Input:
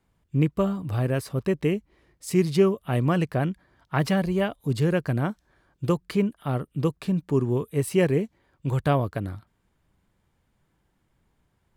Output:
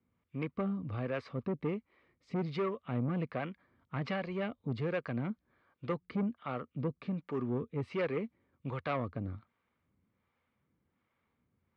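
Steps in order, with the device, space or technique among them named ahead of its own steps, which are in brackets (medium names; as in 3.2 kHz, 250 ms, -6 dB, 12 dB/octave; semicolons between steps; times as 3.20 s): guitar amplifier with harmonic tremolo (harmonic tremolo 1.3 Hz, depth 70%, crossover 440 Hz; saturation -23 dBFS, distortion -12 dB; cabinet simulation 84–4200 Hz, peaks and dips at 85 Hz +6 dB, 240 Hz +9 dB, 500 Hz +6 dB, 1.2 kHz +9 dB, 2.2 kHz +9 dB); trim -7.5 dB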